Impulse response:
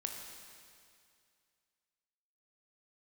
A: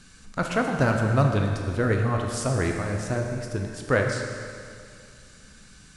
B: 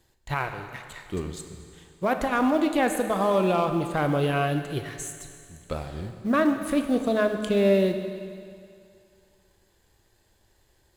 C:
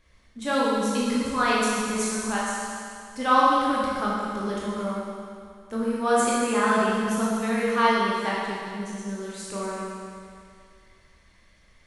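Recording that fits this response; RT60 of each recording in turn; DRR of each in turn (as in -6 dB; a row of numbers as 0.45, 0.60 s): A; 2.3, 2.3, 2.3 s; 2.0, 6.0, -6.5 dB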